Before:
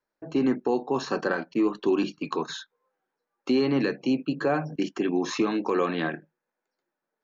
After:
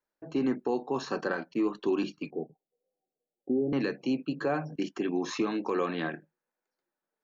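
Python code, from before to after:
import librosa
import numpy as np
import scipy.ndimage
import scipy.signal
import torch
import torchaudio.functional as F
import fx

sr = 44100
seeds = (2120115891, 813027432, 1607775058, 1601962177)

y = fx.cheby1_lowpass(x, sr, hz=770.0, order=8, at=(2.3, 3.73))
y = y * librosa.db_to_amplitude(-4.5)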